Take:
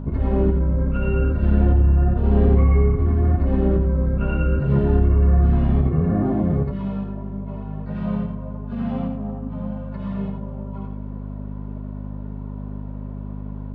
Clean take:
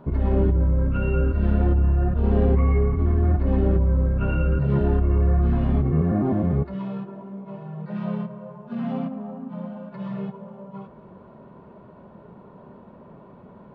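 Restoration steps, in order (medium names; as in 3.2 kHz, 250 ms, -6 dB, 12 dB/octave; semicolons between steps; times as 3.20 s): de-hum 50.8 Hz, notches 5; inverse comb 87 ms -5.5 dB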